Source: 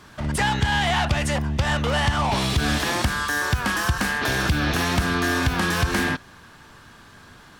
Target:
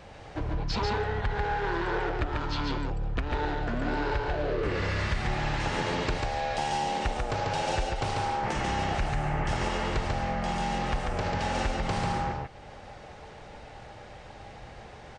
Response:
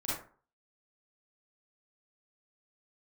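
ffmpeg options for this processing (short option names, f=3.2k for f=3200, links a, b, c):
-filter_complex "[0:a]acompressor=threshold=-30dB:ratio=3,asplit=2[a][b];[b]aecho=0:1:71:0.708[c];[a][c]amix=inputs=2:normalize=0,asetrate=22050,aresample=44100"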